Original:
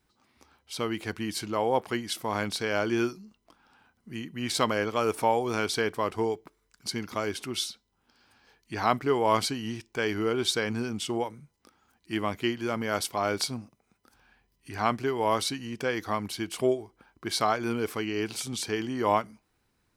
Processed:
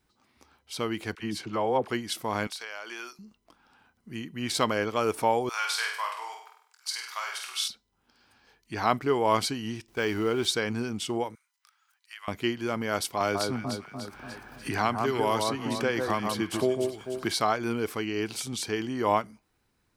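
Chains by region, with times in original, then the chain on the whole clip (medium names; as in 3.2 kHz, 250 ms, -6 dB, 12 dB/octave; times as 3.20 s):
1.15–1.90 s: treble shelf 6.6 kHz -11 dB + phase dispersion lows, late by 41 ms, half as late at 650 Hz
2.47–3.19 s: high-pass 900 Hz + compression 5:1, threshold -34 dBFS
5.49–7.68 s: high-pass 930 Hz 24 dB/octave + doubling 24 ms -8 dB + flutter echo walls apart 8.5 m, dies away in 0.63 s
9.88–10.46 s: jump at every zero crossing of -42 dBFS + de-esser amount 80% + gate -40 dBFS, range -14 dB
11.35–12.28 s: high-pass 1.2 kHz 24 dB/octave + compression 2.5:1, threshold -42 dBFS
13.20–17.34 s: echo whose repeats swap between lows and highs 147 ms, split 1.5 kHz, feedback 52%, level -4 dB + three bands compressed up and down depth 70%
whole clip: none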